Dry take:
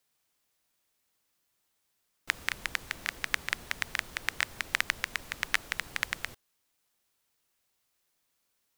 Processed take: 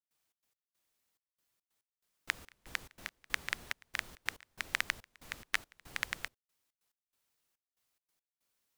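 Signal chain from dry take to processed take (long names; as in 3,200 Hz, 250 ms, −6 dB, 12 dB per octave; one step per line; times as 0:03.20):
gate pattern ".xx.x..xxxx." 141 BPM −24 dB
level −4.5 dB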